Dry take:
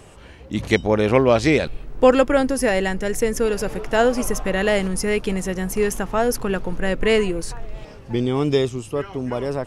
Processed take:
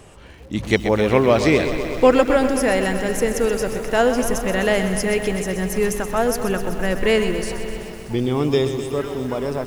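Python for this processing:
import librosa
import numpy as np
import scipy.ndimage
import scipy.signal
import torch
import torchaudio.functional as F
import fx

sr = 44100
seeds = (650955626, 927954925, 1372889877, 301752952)

p1 = x + fx.echo_single(x, sr, ms=585, db=-20.5, dry=0)
y = fx.echo_crushed(p1, sr, ms=127, feedback_pct=80, bits=7, wet_db=-10)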